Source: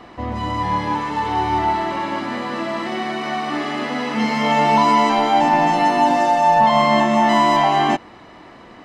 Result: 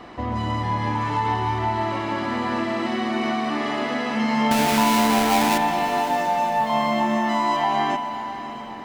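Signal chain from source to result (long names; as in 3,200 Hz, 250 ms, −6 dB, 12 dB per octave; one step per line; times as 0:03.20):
0:04.51–0:05.58: each half-wave held at its own peak
downward compressor 2.5 to 1, threshold −24 dBFS, peak gain reduction 10.5 dB
on a send: feedback delay with all-pass diffusion 603 ms, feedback 47%, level −13 dB
on the sum: spring reverb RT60 3.2 s, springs 45 ms, chirp 25 ms, DRR 5.5 dB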